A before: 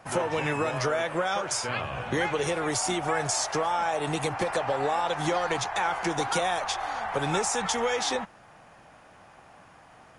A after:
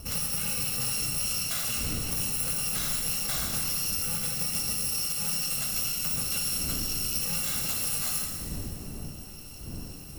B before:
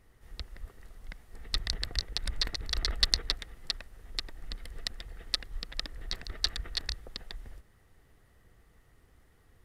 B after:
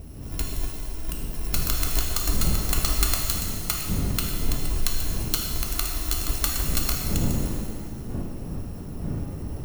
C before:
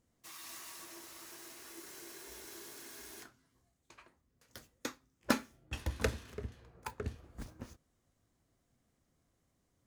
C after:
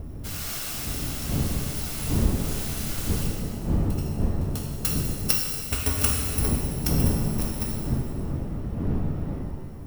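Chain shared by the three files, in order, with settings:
bit-reversed sample order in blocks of 128 samples; wind noise 170 Hz -42 dBFS; compression 6:1, threshold -33 dBFS; pitch-shifted reverb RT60 1.8 s, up +7 st, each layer -8 dB, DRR -0.5 dB; normalise loudness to -27 LUFS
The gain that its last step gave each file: +3.0 dB, +11.0 dB, +13.0 dB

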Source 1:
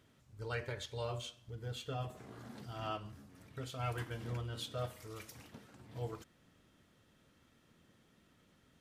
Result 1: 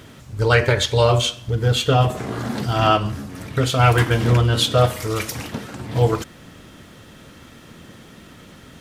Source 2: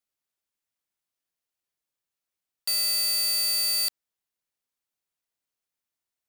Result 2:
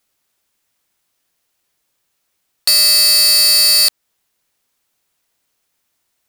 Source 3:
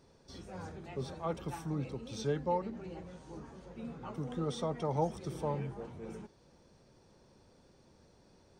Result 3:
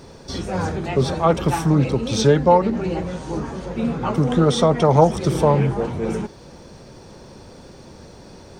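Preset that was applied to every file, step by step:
in parallel at -1 dB: compression, threshold -35 dBFS; on the sum: loudspeaker Doppler distortion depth 0.14 ms; peak normalisation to -1.5 dBFS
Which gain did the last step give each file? +19.5 dB, +13.0 dB, +15.5 dB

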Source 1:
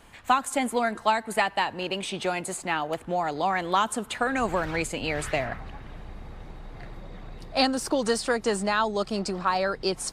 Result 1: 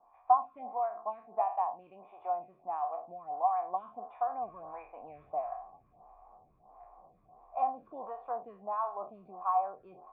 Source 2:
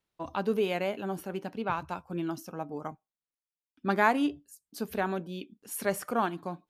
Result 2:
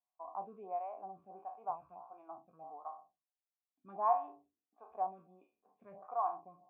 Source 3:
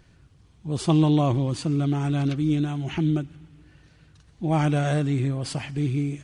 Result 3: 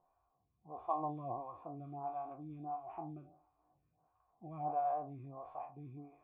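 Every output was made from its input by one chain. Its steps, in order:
spectral sustain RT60 0.41 s; cascade formant filter a; lamp-driven phase shifter 1.5 Hz; trim +2 dB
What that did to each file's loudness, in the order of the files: -8.0 LU, -8.0 LU, -18.5 LU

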